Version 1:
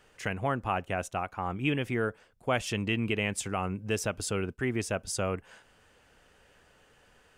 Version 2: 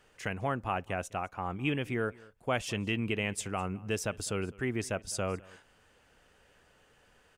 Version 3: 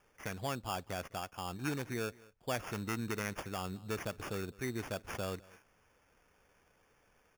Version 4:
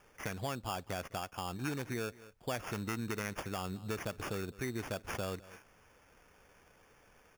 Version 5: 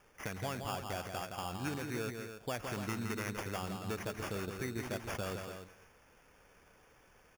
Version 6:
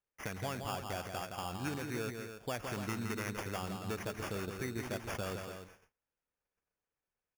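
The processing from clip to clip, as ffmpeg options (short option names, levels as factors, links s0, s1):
-af "aecho=1:1:206:0.0708,volume=0.75"
-af "acrusher=samples=11:mix=1:aa=0.000001,volume=0.531"
-af "acompressor=threshold=0.00562:ratio=2,volume=2"
-af "aecho=1:1:166.2|285.7:0.501|0.355,volume=0.841"
-af "agate=range=0.0282:threshold=0.00126:ratio=16:detection=peak"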